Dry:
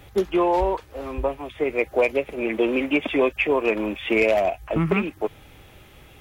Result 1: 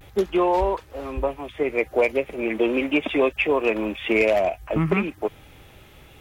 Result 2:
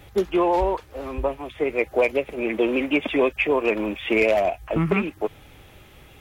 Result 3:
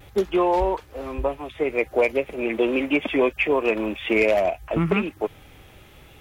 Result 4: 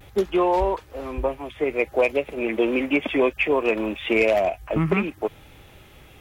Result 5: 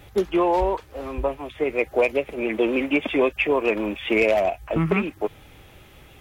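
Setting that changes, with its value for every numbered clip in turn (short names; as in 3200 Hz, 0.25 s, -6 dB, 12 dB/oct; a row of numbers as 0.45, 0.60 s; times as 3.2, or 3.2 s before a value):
vibrato, rate: 0.37, 12, 0.86, 0.58, 7.4 Hz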